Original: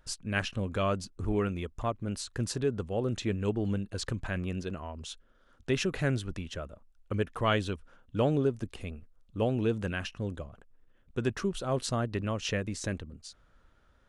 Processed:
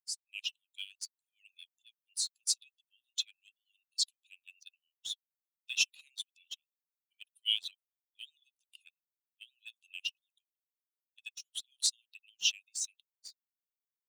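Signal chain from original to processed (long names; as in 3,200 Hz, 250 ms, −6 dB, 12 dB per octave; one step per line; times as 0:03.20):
spectral dynamics exaggerated over time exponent 2
Butterworth high-pass 2,600 Hz 96 dB per octave
leveller curve on the samples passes 1
automatic gain control gain up to 9.5 dB
level −2 dB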